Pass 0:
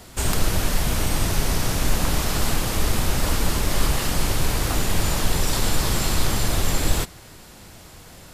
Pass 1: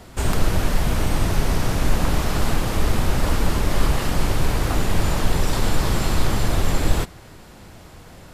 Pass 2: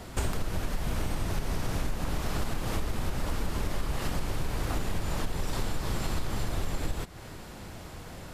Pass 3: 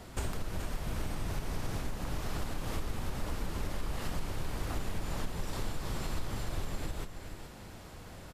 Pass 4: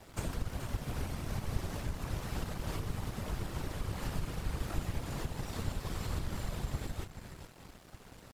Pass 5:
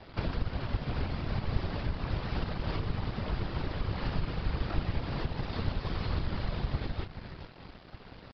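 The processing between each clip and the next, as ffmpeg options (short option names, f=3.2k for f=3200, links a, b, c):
-af "highshelf=f=3.1k:g=-9.5,volume=2.5dB"
-af "acompressor=threshold=-25dB:ratio=12"
-af "aecho=1:1:424:0.335,volume=-5.5dB"
-af "afftfilt=real='hypot(re,im)*cos(2*PI*random(0))':imag='hypot(re,im)*sin(2*PI*random(1))':win_size=512:overlap=0.75,aeval=exprs='sgn(val(0))*max(abs(val(0))-0.00119,0)':c=same,volume=5dB"
-af "aresample=11025,aresample=44100,volume=4.5dB"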